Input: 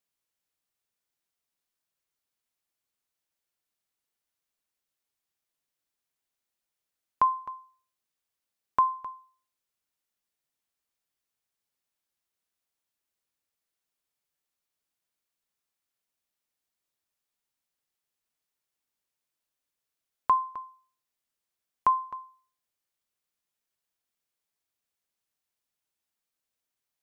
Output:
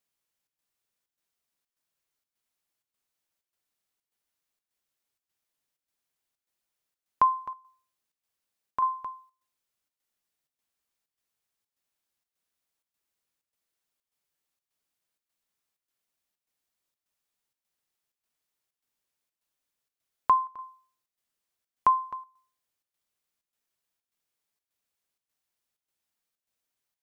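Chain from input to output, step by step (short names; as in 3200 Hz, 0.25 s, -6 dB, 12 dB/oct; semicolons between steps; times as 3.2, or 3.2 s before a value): chopper 1.7 Hz, depth 60%, duty 80%; gain +1.5 dB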